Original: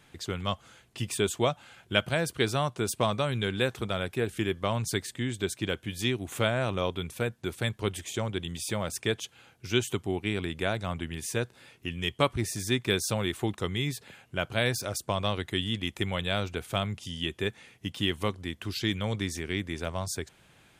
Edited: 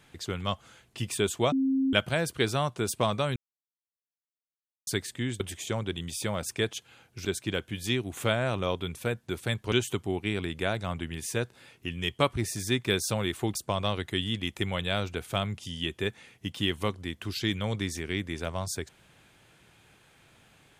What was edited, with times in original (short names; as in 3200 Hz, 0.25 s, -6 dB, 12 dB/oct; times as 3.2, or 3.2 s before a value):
1.52–1.93 bleep 267 Hz -22.5 dBFS
3.36–4.87 mute
7.87–9.72 move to 5.4
13.55–14.95 cut